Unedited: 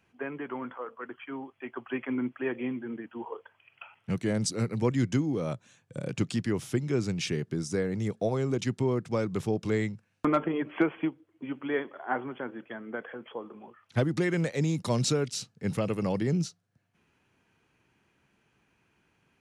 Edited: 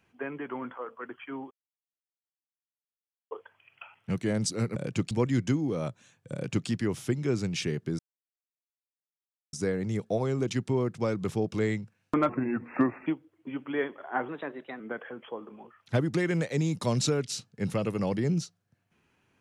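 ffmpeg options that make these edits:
-filter_complex "[0:a]asplit=10[s0][s1][s2][s3][s4][s5][s6][s7][s8][s9];[s0]atrim=end=1.51,asetpts=PTS-STARTPTS,afade=t=out:st=1.506:d=0.004:c=hsin[s10];[s1]atrim=start=1.51:end=3.31,asetpts=PTS-STARTPTS,volume=0[s11];[s2]atrim=start=3.31:end=4.762,asetpts=PTS-STARTPTS,afade=t=in:d=0.004:c=hsin[s12];[s3]atrim=start=5.978:end=6.332[s13];[s4]atrim=start=4.758:end=7.64,asetpts=PTS-STARTPTS,afade=t=out:st=2.878:d=0.004:c=hsin,apad=pad_dur=1.54[s14];[s5]atrim=start=7.64:end=10.404,asetpts=PTS-STARTPTS,afade=t=in:d=0.004:c=hsin[s15];[s6]atrim=start=10.4:end=11.02,asetpts=PTS-STARTPTS,asetrate=35280,aresample=44100[s16];[s7]atrim=start=11.016:end=12.244[s17];[s8]atrim=start=12.24:end=12.83,asetpts=PTS-STARTPTS,asetrate=50715,aresample=44100,atrim=end_sample=22625,asetpts=PTS-STARTPTS[s18];[s9]atrim=start=12.826[s19];[s10][s11][s12]concat=n=3:v=0:a=1[s20];[s20][s13]acrossfade=d=0.004:c1=hsin:c2=hsin[s21];[s14][s15]concat=n=2:v=0:a=1[s22];[s21][s22]acrossfade=d=0.004:c1=hsin:c2=hsin[s23];[s23][s16]acrossfade=d=0.004:c1=hsin:c2=hsin[s24];[s24][s17]acrossfade=d=0.004:c1=hsin:c2=hsin[s25];[s25][s18]acrossfade=d=0.004:c1=hsin:c2=hsin[s26];[s26][s19]acrossfade=d=0.004:c1=hsin:c2=hsin"

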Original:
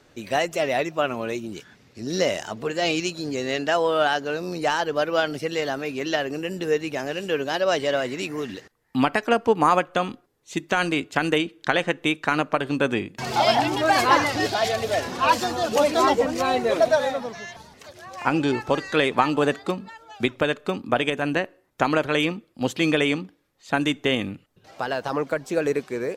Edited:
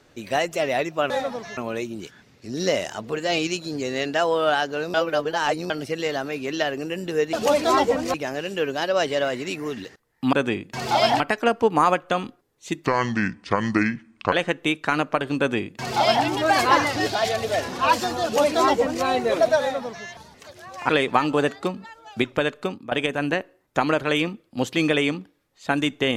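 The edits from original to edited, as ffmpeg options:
-filter_complex "[0:a]asplit=13[s0][s1][s2][s3][s4][s5][s6][s7][s8][s9][s10][s11][s12];[s0]atrim=end=1.102[s13];[s1]atrim=start=16.998:end=17.472[s14];[s2]atrim=start=1.098:end=4.472[s15];[s3]atrim=start=4.468:end=5.232,asetpts=PTS-STARTPTS,areverse[s16];[s4]atrim=start=5.228:end=6.862[s17];[s5]atrim=start=15.628:end=16.442[s18];[s6]atrim=start=6.858:end=9.052[s19];[s7]atrim=start=12.778:end=13.652[s20];[s8]atrim=start=9.048:end=10.714[s21];[s9]atrim=start=10.71:end=11.72,asetpts=PTS-STARTPTS,asetrate=30429,aresample=44100,atrim=end_sample=64552,asetpts=PTS-STARTPTS[s22];[s10]atrim=start=11.716:end=18.292[s23];[s11]atrim=start=18.928:end=20.95,asetpts=PTS-STARTPTS,afade=t=out:st=1.722:d=0.3:silence=0.199526[s24];[s12]atrim=start=20.95,asetpts=PTS-STARTPTS,afade=t=in:d=0.004:c=hsin:silence=0.199526[s25];[s13][s14]acrossfade=d=0.004:c1=hsin:c2=hsin[s26];[s26][s15]acrossfade=d=0.004:c1=hsin:c2=hsin[s27];[s27][s16]acrossfade=d=0.004:c1=hsin:c2=hsin[s28];[s28][s17]acrossfade=d=0.004:c1=hsin:c2=hsin[s29];[s29][s18]acrossfade=d=0.004:c1=hsin:c2=hsin[s30];[s30][s19]acrossfade=d=0.004:c1=hsin:c2=hsin[s31];[s31][s20]acrossfade=d=0.004:c1=hsin:c2=hsin[s32];[s32][s21]acrossfade=d=0.004:c1=hsin:c2=hsin[s33];[s33][s22]acrossfade=d=0.004:c1=hsin:c2=hsin[s34];[s34][s23]acrossfade=d=0.004:c1=hsin:c2=hsin[s35];[s24][s25]concat=n=2:v=0:a=1[s36];[s35][s36]acrossfade=d=0.004:c1=hsin:c2=hsin"

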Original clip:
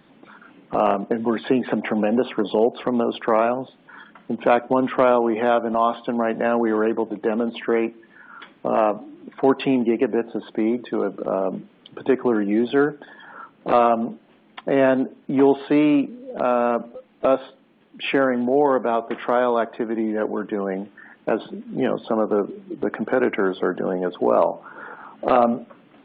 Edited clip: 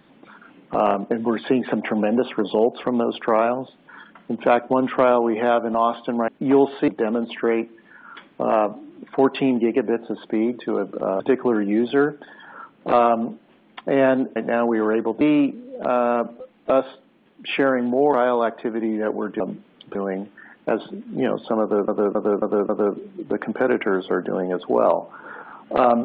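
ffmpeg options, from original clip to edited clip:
-filter_complex "[0:a]asplit=13[s0][s1][s2][s3][s4][s5][s6][s7][s8][s9][s10][s11][s12];[s0]atrim=end=6.282[s13];[s1]atrim=start=15.158:end=15.762[s14];[s2]atrim=start=7.128:end=11.452[s15];[s3]atrim=start=11.998:end=15.162[s16];[s4]atrim=start=6.278:end=7.132[s17];[s5]atrim=start=15.758:end=18.682[s18];[s6]atrim=start=19.278:end=20.552[s19];[s7]atrim=start=11.448:end=12.002[s20];[s8]atrim=start=20.548:end=22.482[s21];[s9]atrim=start=22.208:end=22.482[s22];[s10]atrim=start=22.208:end=22.482[s23];[s11]atrim=start=22.208:end=22.482[s24];[s12]atrim=start=22.208[s25];[s13][s14]acrossfade=d=0.004:c1=hsin:c2=hsin[s26];[s26][s15]acrossfade=d=0.004:c1=hsin:c2=hsin[s27];[s27][s16]acrossfade=d=0.004:c1=hsin:c2=hsin[s28];[s28][s17]acrossfade=d=0.004:c1=hsin:c2=hsin[s29];[s29][s18]acrossfade=d=0.004:c1=hsin:c2=hsin[s30];[s30][s19]acrossfade=d=0.004:c1=hsin:c2=hsin[s31];[s31][s20]acrossfade=d=0.004:c1=hsin:c2=hsin[s32];[s32][s21]acrossfade=d=0.004:c1=hsin:c2=hsin[s33];[s33][s22]acrossfade=d=0.004:c1=hsin:c2=hsin[s34];[s34][s23]acrossfade=d=0.004:c1=hsin:c2=hsin[s35];[s35][s24]acrossfade=d=0.004:c1=hsin:c2=hsin[s36];[s36][s25]acrossfade=d=0.004:c1=hsin:c2=hsin"

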